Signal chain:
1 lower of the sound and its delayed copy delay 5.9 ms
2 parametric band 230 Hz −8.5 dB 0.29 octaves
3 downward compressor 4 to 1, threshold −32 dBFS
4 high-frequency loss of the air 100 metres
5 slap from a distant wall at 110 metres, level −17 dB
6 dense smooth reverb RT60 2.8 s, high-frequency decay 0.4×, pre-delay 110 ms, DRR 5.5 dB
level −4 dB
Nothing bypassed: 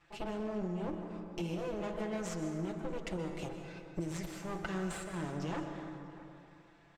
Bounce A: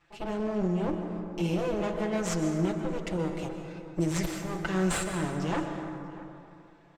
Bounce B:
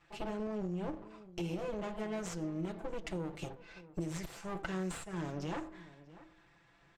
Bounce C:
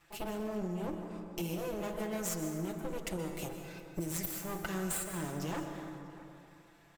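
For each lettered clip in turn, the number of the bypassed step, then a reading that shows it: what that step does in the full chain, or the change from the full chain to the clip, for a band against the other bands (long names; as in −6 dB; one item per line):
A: 3, average gain reduction 6.5 dB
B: 6, change in crest factor +1.5 dB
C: 4, 8 kHz band +9.5 dB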